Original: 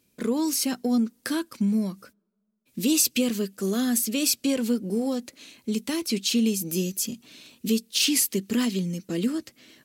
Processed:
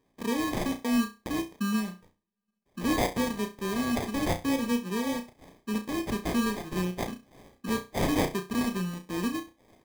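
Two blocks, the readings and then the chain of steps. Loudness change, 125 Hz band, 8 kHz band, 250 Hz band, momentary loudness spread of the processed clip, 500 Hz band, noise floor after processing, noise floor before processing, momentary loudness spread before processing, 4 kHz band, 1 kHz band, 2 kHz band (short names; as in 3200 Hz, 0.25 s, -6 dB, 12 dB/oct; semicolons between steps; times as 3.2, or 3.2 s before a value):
-5.0 dB, -1.5 dB, -14.0 dB, -4.0 dB, 9 LU, -2.5 dB, -77 dBFS, -70 dBFS, 10 LU, -9.5 dB, +7.0 dB, +0.5 dB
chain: transient shaper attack -2 dB, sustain -8 dB; sample-rate reducer 1400 Hz, jitter 0%; flutter echo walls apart 5.7 m, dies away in 0.27 s; gain -4 dB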